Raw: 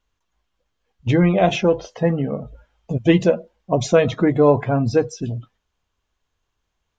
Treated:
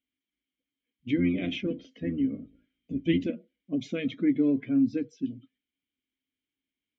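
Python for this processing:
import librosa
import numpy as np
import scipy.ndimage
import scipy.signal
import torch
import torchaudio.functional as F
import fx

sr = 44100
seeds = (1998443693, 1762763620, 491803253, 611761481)

y = fx.octave_divider(x, sr, octaves=1, level_db=-1.0, at=(1.17, 3.3))
y = fx.vowel_filter(y, sr, vowel='i')
y = y * librosa.db_to_amplitude(1.5)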